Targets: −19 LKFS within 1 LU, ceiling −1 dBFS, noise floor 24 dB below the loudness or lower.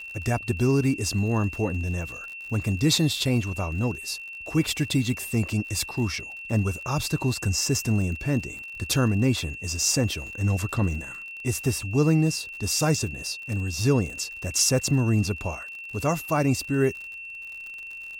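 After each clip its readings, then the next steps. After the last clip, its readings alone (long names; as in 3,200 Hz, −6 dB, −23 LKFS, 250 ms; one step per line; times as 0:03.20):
crackle rate 51 per second; interfering tone 2,700 Hz; level of the tone −36 dBFS; integrated loudness −25.5 LKFS; sample peak −9.5 dBFS; target loudness −19.0 LKFS
→ click removal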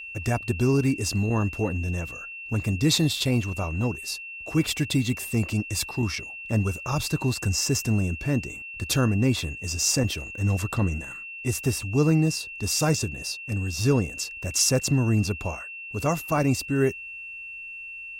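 crackle rate 0.11 per second; interfering tone 2,700 Hz; level of the tone −36 dBFS
→ notch filter 2,700 Hz, Q 30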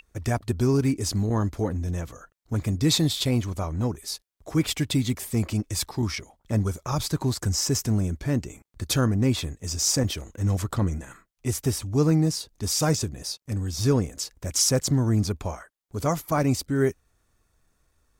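interfering tone none found; integrated loudness −25.5 LKFS; sample peak −10.0 dBFS; target loudness −19.0 LKFS
→ level +6.5 dB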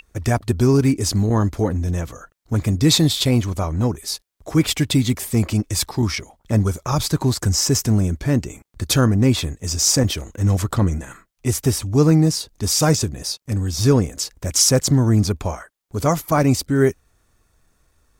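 integrated loudness −19.0 LKFS; sample peak −3.5 dBFS; background noise floor −65 dBFS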